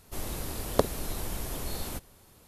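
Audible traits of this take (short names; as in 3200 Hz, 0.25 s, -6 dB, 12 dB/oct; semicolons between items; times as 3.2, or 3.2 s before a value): noise floor -58 dBFS; spectral tilt -4.0 dB/oct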